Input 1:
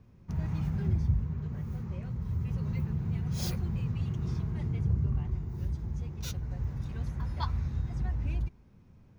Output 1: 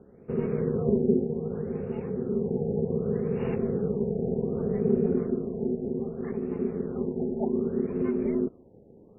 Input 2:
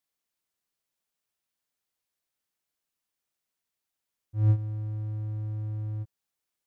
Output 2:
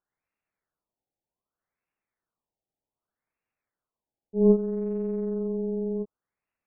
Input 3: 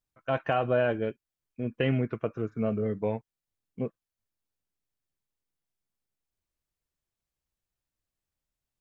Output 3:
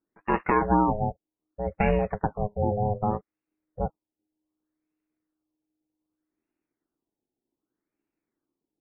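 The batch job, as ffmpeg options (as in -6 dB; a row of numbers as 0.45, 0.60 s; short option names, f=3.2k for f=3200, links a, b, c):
-af "aeval=exprs='val(0)*sin(2*PI*310*n/s)':c=same,afftfilt=real='re*lt(b*sr/1024,870*pow(2900/870,0.5+0.5*sin(2*PI*0.65*pts/sr)))':imag='im*lt(b*sr/1024,870*pow(2900/870,0.5+0.5*sin(2*PI*0.65*pts/sr)))':win_size=1024:overlap=0.75,volume=6.5dB"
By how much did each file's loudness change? +4.5, +4.5, +3.5 LU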